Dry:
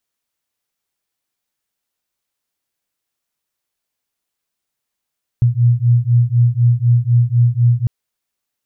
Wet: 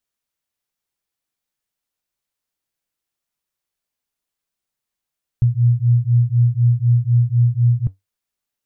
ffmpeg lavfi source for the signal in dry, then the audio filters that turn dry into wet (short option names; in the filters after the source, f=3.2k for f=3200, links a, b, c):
-f lavfi -i "aevalsrc='0.224*(sin(2*PI*118*t)+sin(2*PI*122*t))':d=2.45:s=44100"
-af "lowshelf=f=91:g=5.5,flanger=delay=4.8:depth=2.1:regen=-80:speed=0.24:shape=triangular"